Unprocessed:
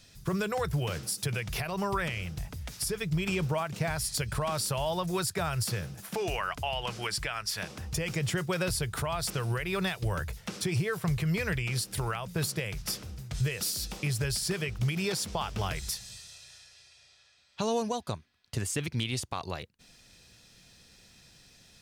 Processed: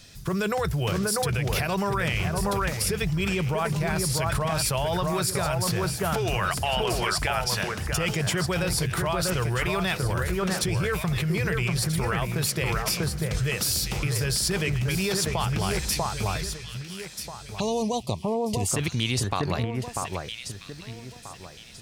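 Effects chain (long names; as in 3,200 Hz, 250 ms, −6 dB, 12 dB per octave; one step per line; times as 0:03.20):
delay that swaps between a low-pass and a high-pass 643 ms, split 1,800 Hz, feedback 51%, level −3 dB
in parallel at 0 dB: compressor whose output falls as the input rises −32 dBFS, ratio −0.5
0:17.60–0:18.68: on the sum: Butterworth band-reject 1,500 Hz, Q 1.2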